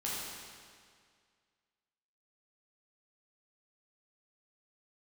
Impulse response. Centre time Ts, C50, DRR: 129 ms, −2.5 dB, −7.5 dB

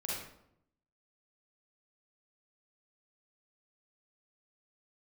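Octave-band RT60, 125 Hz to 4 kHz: 1.0, 0.95, 0.80, 0.70, 0.55, 0.50 seconds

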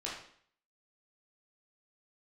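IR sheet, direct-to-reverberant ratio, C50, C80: −5.5 dB, 3.0 dB, 7.0 dB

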